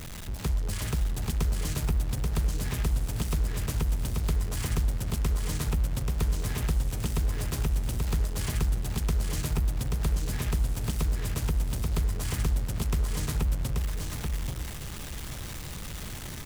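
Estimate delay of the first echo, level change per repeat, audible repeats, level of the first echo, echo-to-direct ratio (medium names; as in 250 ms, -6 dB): 833 ms, -15.0 dB, 2, -3.5 dB, -3.5 dB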